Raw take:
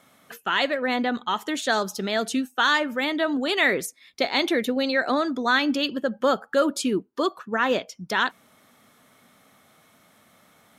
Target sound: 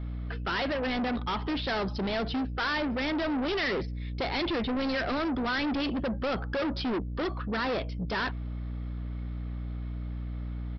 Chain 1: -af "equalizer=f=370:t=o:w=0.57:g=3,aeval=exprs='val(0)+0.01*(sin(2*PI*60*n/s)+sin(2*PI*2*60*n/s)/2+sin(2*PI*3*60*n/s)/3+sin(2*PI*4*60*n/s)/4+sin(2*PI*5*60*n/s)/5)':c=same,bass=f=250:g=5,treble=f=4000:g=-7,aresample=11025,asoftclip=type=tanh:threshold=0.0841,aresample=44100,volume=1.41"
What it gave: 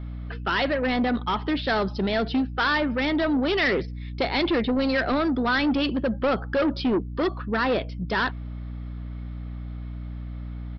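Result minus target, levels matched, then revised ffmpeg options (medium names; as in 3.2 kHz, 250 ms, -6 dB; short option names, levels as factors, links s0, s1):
saturation: distortion -6 dB
-af "equalizer=f=370:t=o:w=0.57:g=3,aeval=exprs='val(0)+0.01*(sin(2*PI*60*n/s)+sin(2*PI*2*60*n/s)/2+sin(2*PI*3*60*n/s)/3+sin(2*PI*4*60*n/s)/4+sin(2*PI*5*60*n/s)/5)':c=same,bass=f=250:g=5,treble=f=4000:g=-7,aresample=11025,asoftclip=type=tanh:threshold=0.0299,aresample=44100,volume=1.41"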